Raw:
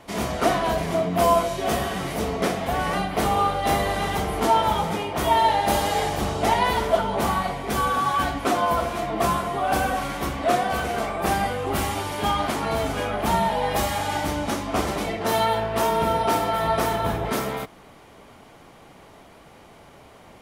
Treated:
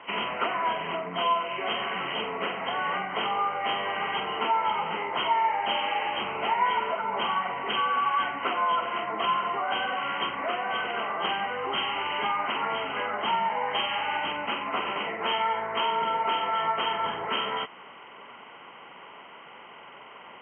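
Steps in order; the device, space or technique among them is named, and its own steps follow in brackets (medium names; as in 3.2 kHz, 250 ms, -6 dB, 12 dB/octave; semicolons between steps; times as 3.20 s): 5.71–6.20 s: comb 3.5 ms, depth 49%; hearing aid with frequency lowering (knee-point frequency compression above 1.9 kHz 4:1; compression 3:1, threshold -29 dBFS, peak gain reduction 11.5 dB; cabinet simulation 280–6400 Hz, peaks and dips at 300 Hz -6 dB, 660 Hz -4 dB, 990 Hz +8 dB, 1.4 kHz +6 dB, 3.4 kHz +10 dB, 5.8 kHz +8 dB)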